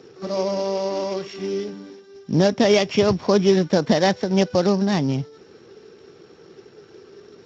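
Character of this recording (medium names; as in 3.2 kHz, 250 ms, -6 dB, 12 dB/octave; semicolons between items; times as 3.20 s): a buzz of ramps at a fixed pitch in blocks of 8 samples; Speex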